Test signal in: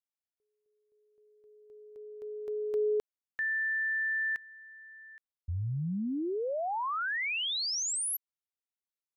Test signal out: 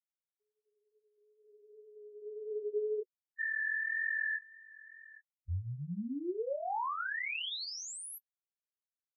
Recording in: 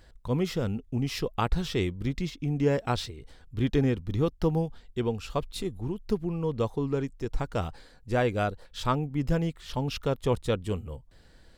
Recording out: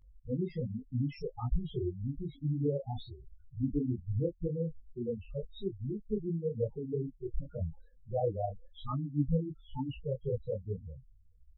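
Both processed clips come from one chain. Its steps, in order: loudest bins only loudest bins 4; wow and flutter 2.1 Hz 19 cents; detuned doubles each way 42 cents

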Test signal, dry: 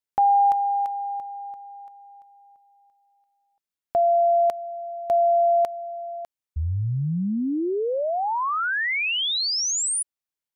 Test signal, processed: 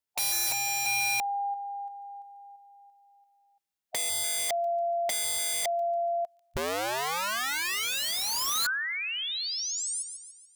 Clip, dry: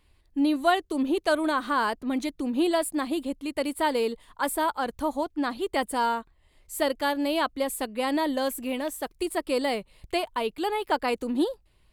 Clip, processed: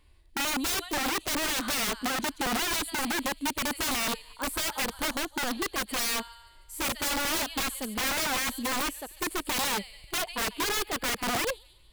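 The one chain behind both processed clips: thin delay 0.144 s, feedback 48%, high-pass 3100 Hz, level -8.5 dB; harmonic-percussive split percussive -13 dB; wrapped overs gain 28.5 dB; gain +4.5 dB

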